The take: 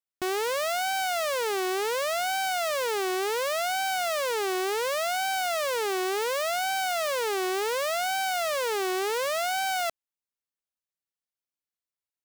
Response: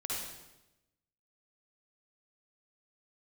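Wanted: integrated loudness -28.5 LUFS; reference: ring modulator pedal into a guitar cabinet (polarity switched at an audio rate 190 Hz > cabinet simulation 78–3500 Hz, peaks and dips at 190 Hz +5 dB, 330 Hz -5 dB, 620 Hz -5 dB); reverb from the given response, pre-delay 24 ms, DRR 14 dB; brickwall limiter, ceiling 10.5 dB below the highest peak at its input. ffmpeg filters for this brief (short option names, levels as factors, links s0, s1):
-filter_complex "[0:a]alimiter=level_in=2.99:limit=0.0631:level=0:latency=1,volume=0.335,asplit=2[s0][s1];[1:a]atrim=start_sample=2205,adelay=24[s2];[s1][s2]afir=irnorm=-1:irlink=0,volume=0.141[s3];[s0][s3]amix=inputs=2:normalize=0,aeval=exprs='val(0)*sgn(sin(2*PI*190*n/s))':c=same,highpass=78,equalizer=f=190:t=q:w=4:g=5,equalizer=f=330:t=q:w=4:g=-5,equalizer=f=620:t=q:w=4:g=-5,lowpass=f=3500:w=0.5412,lowpass=f=3500:w=1.3066,volume=3.35"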